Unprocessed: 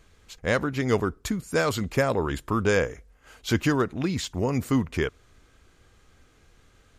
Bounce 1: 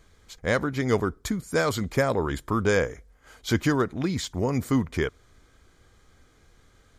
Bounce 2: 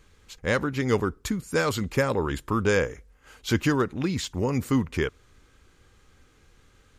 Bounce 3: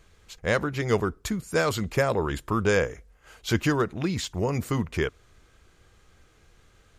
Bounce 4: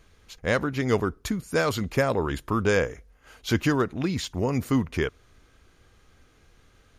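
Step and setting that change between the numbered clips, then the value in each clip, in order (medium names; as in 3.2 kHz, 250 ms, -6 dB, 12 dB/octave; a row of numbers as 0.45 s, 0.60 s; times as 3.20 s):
band-stop, frequency: 2.7 kHz, 670 Hz, 260 Hz, 7.7 kHz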